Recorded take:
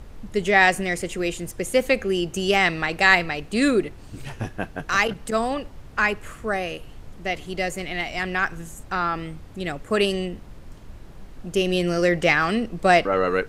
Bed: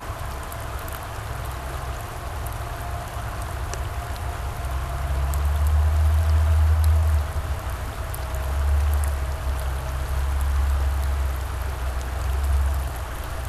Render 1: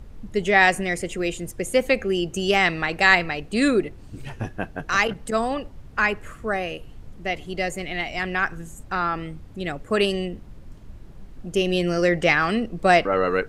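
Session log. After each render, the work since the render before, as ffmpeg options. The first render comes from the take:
-af "afftdn=nr=6:nf=-43"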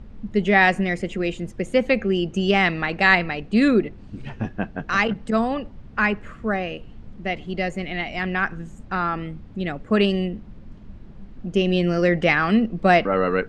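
-af "lowpass=4100,equalizer=f=210:t=o:w=0.51:g=8.5"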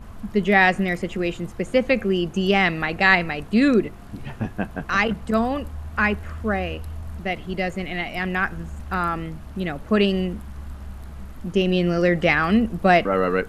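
-filter_complex "[1:a]volume=0.168[s0];[0:a][s0]amix=inputs=2:normalize=0"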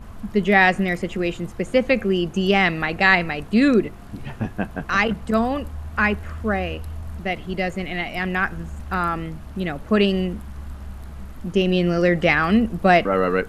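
-af "volume=1.12,alimiter=limit=0.794:level=0:latency=1"

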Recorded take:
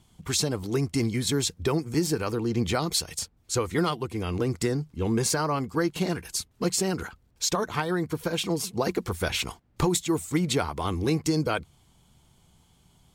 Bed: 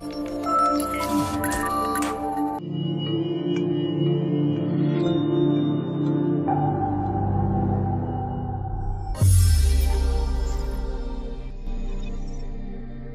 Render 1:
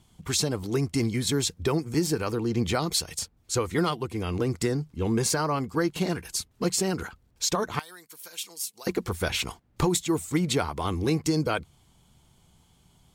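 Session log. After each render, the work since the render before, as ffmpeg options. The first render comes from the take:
-filter_complex "[0:a]asettb=1/sr,asplit=3[s0][s1][s2];[s0]atrim=end=7.794[s3];[s1]atrim=start=7.79:end=8.87,asetpts=PTS-STARTPTS,afade=t=in:d=0.004:c=qsin,afade=t=out:st=1.076:d=0.004:c=qsin,aderivative[s4];[s2]atrim=start=8.866[s5];[s3][s4]acrossfade=d=0.004:c1=hsin:c2=qsin[s6];[s6][s5]acrossfade=d=0.004:c1=qsin:c2=hsin"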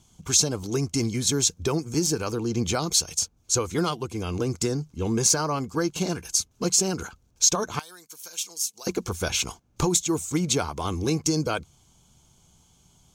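-af "equalizer=f=6300:w=2.7:g=12,bandreject=f=1900:w=5.1"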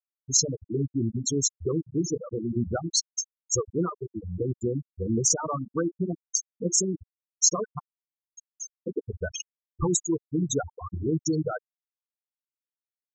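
-af "bandreject=f=50:t=h:w=6,bandreject=f=100:t=h:w=6,bandreject=f=150:t=h:w=6,bandreject=f=200:t=h:w=6,bandreject=f=250:t=h:w=6,bandreject=f=300:t=h:w=6,bandreject=f=350:t=h:w=6,bandreject=f=400:t=h:w=6,afftfilt=real='re*gte(hypot(re,im),0.2)':imag='im*gte(hypot(re,im),0.2)':win_size=1024:overlap=0.75"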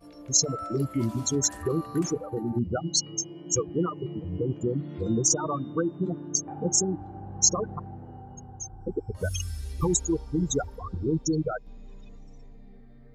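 -filter_complex "[1:a]volume=0.15[s0];[0:a][s0]amix=inputs=2:normalize=0"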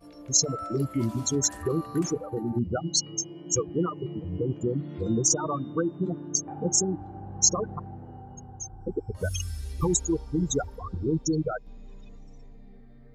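-af anull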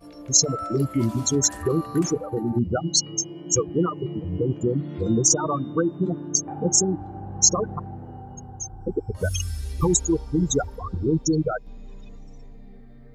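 -af "volume=1.68,alimiter=limit=0.708:level=0:latency=1"

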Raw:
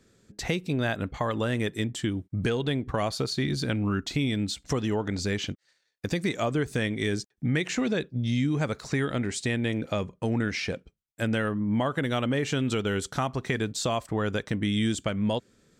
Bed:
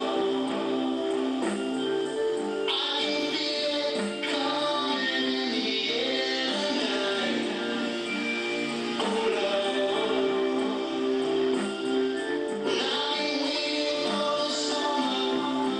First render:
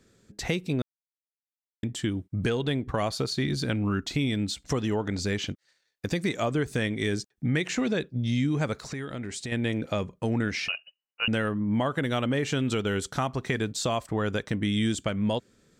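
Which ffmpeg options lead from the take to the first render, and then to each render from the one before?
-filter_complex "[0:a]asettb=1/sr,asplit=3[s0][s1][s2];[s0]atrim=end=8.924[s3];[s1]atrim=start=8.92:end=9.52,asetpts=PTS-STARTPTS,afade=t=in:d=0.004:c=qsin,afade=t=out:st=0.596:d=0.004:c=qsin,acompressor=threshold=0.0224:ratio=3:attack=3.2:release=140:knee=1:detection=peak[s4];[s2]atrim=start=9.516[s5];[s3][s4]acrossfade=d=0.004:c1=hsin:c2=qsin[s6];[s6][s5]acrossfade=d=0.004:c1=qsin:c2=hsin,asettb=1/sr,asplit=3[s7][s8][s9];[s7]atrim=end=10.684[s10];[s8]atrim=start=10.68:end=11.28,asetpts=PTS-STARTPTS,afade=t=in:d=0.004:c=qsin,afade=t=out:st=0.596:d=0.004:c=qsin,lowpass=f=2600:t=q:w=0.5098,lowpass=f=2600:t=q:w=0.6013,lowpass=f=2600:t=q:w=0.9,lowpass=f=2600:t=q:w=2.563,afreqshift=-3000[s11];[s9]atrim=start=11.276[s12];[s10][s11]acrossfade=d=0.004:c1=hsin:c2=qsin[s13];[s13][s12]acrossfade=d=0.004:c1=qsin:c2=hsin,asplit=3[s14][s15][s16];[s14]atrim=end=0.82,asetpts=PTS-STARTPTS,afade=t=out:st=0.816:d=0.004:c=hsin[s17];[s15]atrim=start=0.82:end=1.83,asetpts=PTS-STARTPTS,volume=0[s18];[s16]atrim=start=1.83,asetpts=PTS-STARTPTS,afade=t=in:d=0.004:c=hsin[s19];[s17][s18][s19]concat=n=3:v=0:a=1"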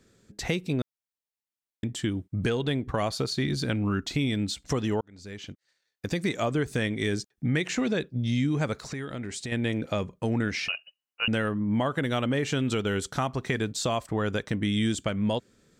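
-filter_complex "[0:a]asplit=2[s0][s1];[s0]atrim=end=5.01,asetpts=PTS-STARTPTS,afade=t=out:st=5.006:d=0.004:c=hsin[s2];[s1]atrim=start=5.01,asetpts=PTS-STARTPTS,afade=t=in:d=1.24[s3];[s2][s3]concat=n=2:v=0:a=1"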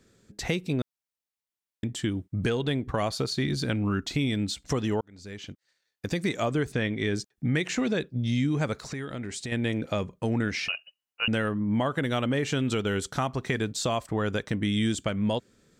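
-filter_complex "[0:a]asplit=3[s0][s1][s2];[s0]afade=t=out:st=6.71:d=0.02[s3];[s1]lowpass=4200,afade=t=in:st=6.71:d=0.02,afade=t=out:st=7.14:d=0.02[s4];[s2]afade=t=in:st=7.14:d=0.02[s5];[s3][s4][s5]amix=inputs=3:normalize=0"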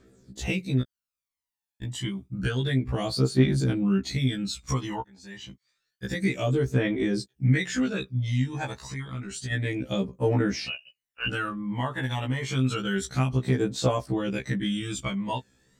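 -af "aphaser=in_gain=1:out_gain=1:delay=1.2:decay=0.62:speed=0.29:type=triangular,afftfilt=real='re*1.73*eq(mod(b,3),0)':imag='im*1.73*eq(mod(b,3),0)':win_size=2048:overlap=0.75"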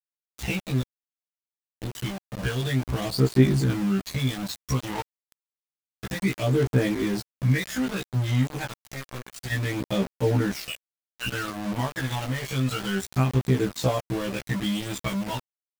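-af "aeval=exprs='val(0)*gte(abs(val(0)),0.0282)':c=same,aphaser=in_gain=1:out_gain=1:delay=1.8:decay=0.26:speed=0.6:type=sinusoidal"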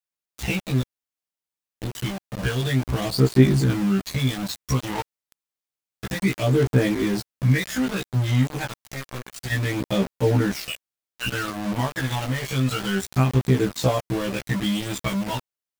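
-af "volume=1.41"

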